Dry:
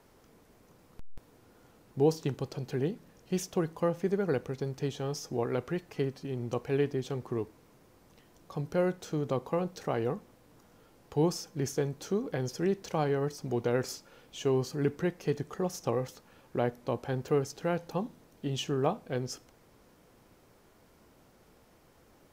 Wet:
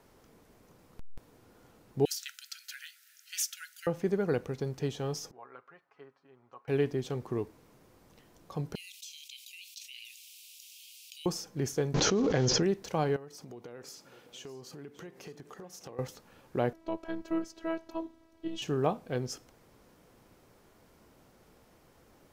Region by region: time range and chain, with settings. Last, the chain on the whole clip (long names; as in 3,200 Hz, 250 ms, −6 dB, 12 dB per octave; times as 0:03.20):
0:02.05–0:03.87: linear-phase brick-wall high-pass 1,300 Hz + spectral tilt +3 dB per octave + highs frequency-modulated by the lows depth 0.44 ms
0:05.31–0:06.68: low-pass with resonance 1,200 Hz, resonance Q 2.1 + first difference + comb filter 7.3 ms, depth 53%
0:08.75–0:11.26: Butterworth high-pass 2,500 Hz 72 dB per octave + envelope flattener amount 70%
0:11.94–0:12.63: one scale factor per block 5 bits + Butterworth low-pass 6,800 Hz 72 dB per octave + envelope flattener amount 100%
0:13.16–0:15.99: high-pass filter 210 Hz 6 dB per octave + downward compressor 5 to 1, threshold −44 dBFS + single-tap delay 609 ms −15.5 dB
0:16.73–0:18.62: high-shelf EQ 5,600 Hz −11.5 dB + phases set to zero 326 Hz
whole clip: no processing